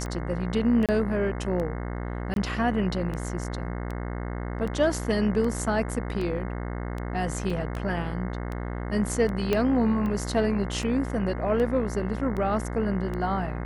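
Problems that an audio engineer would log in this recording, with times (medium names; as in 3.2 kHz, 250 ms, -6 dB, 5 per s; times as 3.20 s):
buzz 60 Hz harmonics 36 -32 dBFS
tick 78 rpm -22 dBFS
0.86–0.89 s: dropout 27 ms
2.34–2.36 s: dropout 22 ms
7.50 s: dropout 3.8 ms
9.53 s: pop -11 dBFS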